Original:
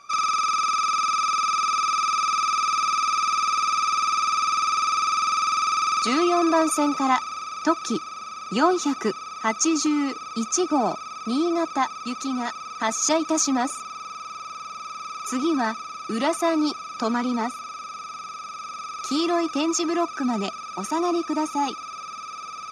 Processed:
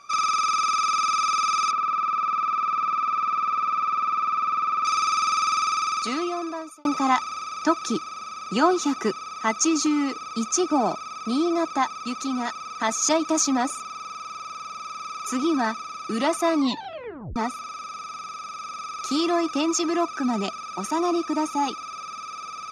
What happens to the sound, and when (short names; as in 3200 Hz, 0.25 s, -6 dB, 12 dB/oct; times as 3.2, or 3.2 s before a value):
1.71–4.85 LPF 1700 Hz
5.54–6.85 fade out
16.55 tape stop 0.81 s